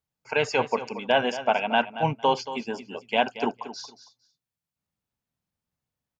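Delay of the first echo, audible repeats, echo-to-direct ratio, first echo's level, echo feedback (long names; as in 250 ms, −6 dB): 228 ms, 2, −13.0 dB, −13.0 dB, 19%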